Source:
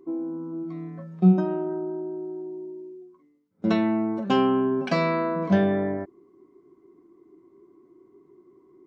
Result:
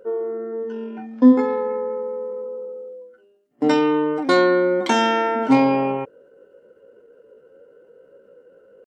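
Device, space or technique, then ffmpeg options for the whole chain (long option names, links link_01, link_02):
chipmunk voice: -filter_complex "[0:a]asplit=3[link_01][link_02][link_03];[link_01]afade=type=out:start_time=0.37:duration=0.02[link_04];[link_02]lowpass=frequency=5000:width=0.5412,lowpass=frequency=5000:width=1.3066,afade=type=in:start_time=0.37:duration=0.02,afade=type=out:start_time=1.96:duration=0.02[link_05];[link_03]afade=type=in:start_time=1.96:duration=0.02[link_06];[link_04][link_05][link_06]amix=inputs=3:normalize=0,asetrate=60591,aresample=44100,atempo=0.727827,volume=5dB"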